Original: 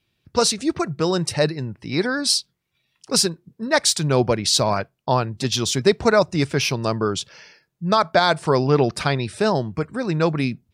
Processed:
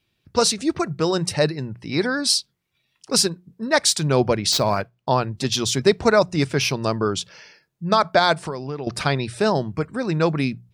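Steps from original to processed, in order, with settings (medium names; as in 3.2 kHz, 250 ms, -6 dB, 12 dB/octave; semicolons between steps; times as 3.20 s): 4.52–5.09 s: median filter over 5 samples; 8.33–8.87 s: compression 5:1, threshold -28 dBFS, peak gain reduction 14.5 dB; hum notches 60/120/180 Hz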